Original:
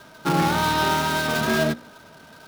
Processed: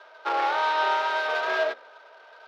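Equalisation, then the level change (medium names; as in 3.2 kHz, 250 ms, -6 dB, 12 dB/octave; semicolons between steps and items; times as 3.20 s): steep high-pass 460 Hz 36 dB/octave; distance through air 250 m; 0.0 dB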